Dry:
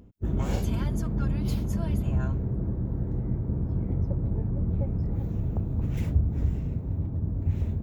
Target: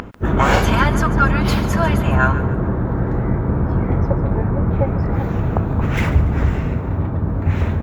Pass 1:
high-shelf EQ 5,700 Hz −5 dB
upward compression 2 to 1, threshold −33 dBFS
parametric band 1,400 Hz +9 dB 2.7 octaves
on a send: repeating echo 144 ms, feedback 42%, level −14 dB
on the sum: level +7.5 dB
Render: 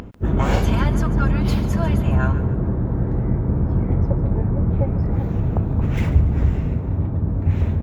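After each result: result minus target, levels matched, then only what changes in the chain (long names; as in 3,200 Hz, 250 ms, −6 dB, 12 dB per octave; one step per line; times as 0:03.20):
1,000 Hz band −7.5 dB; 8,000 Hz band −5.0 dB
change: parametric band 1,400 Hz +20.5 dB 2.7 octaves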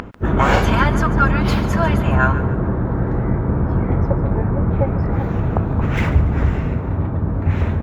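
8,000 Hz band −4.0 dB
change: high-shelf EQ 5,700 Hz +2 dB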